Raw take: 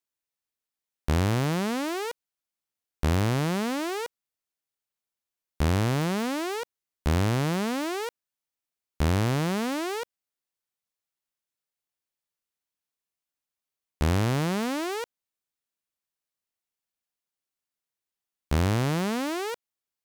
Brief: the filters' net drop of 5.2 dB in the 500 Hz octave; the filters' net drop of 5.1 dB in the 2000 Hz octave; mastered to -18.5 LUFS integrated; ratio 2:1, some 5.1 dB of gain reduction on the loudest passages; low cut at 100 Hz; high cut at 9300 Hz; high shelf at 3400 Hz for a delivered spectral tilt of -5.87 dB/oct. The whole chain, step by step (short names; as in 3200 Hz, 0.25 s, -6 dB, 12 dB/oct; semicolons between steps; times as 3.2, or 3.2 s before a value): HPF 100 Hz; LPF 9300 Hz; bell 500 Hz -6.5 dB; bell 2000 Hz -4.5 dB; high shelf 3400 Hz -5.5 dB; compressor 2:1, threshold -31 dBFS; gain +16 dB